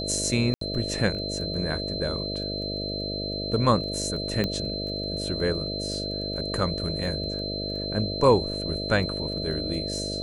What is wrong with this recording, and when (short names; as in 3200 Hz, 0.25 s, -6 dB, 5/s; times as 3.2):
buzz 50 Hz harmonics 13 -33 dBFS
crackle 11/s -36 dBFS
tone 4100 Hz -32 dBFS
0.54–0.61 gap 73 ms
4.44 pop -13 dBFS